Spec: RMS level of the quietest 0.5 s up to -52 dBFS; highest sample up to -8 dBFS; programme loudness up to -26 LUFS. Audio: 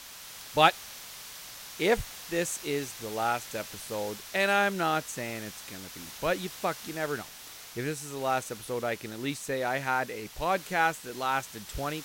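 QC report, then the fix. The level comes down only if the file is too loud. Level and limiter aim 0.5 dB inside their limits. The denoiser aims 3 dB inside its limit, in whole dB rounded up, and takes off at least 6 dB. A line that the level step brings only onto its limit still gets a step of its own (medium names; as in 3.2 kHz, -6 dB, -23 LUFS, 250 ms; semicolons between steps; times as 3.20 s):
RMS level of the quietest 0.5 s -46 dBFS: fail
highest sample -7.5 dBFS: fail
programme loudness -30.5 LUFS: pass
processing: noise reduction 9 dB, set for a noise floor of -46 dBFS; peak limiter -8.5 dBFS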